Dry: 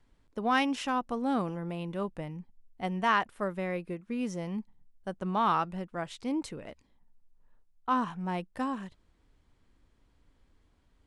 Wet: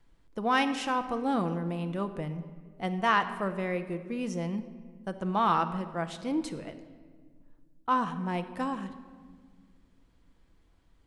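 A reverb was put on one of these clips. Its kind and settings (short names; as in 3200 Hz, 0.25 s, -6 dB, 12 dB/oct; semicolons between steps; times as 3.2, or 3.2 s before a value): shoebox room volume 2200 m³, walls mixed, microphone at 0.73 m; gain +1 dB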